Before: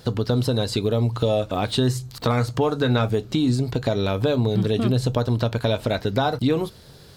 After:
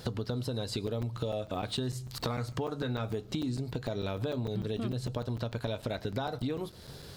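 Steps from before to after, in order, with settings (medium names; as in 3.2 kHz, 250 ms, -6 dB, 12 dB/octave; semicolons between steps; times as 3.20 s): compression 4:1, threshold -33 dBFS, peak gain reduction 14.5 dB; on a send at -22 dB: reverberation RT60 0.50 s, pre-delay 65 ms; on the sum: crackling interface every 0.15 s, samples 256, zero, from 0.87 s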